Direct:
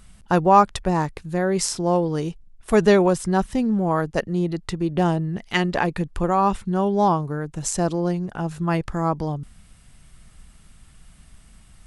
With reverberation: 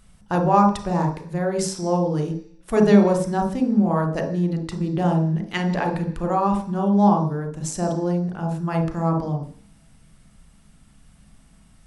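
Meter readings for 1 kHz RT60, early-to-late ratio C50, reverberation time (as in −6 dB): 0.50 s, 6.5 dB, 0.50 s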